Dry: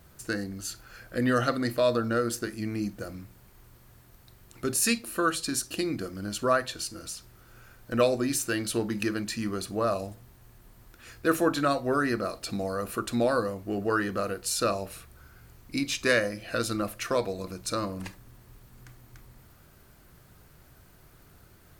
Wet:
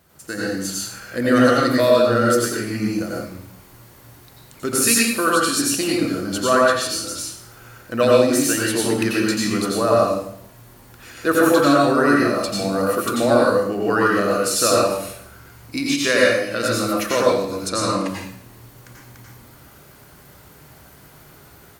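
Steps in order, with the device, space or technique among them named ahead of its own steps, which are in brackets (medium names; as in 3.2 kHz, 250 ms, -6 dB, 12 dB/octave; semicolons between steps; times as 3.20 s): far laptop microphone (reverberation RT60 0.65 s, pre-delay 83 ms, DRR -4 dB; high-pass 170 Hz 6 dB/octave; level rider gain up to 6.5 dB); 17.68–18.08 s: low-pass 11 kHz 24 dB/octave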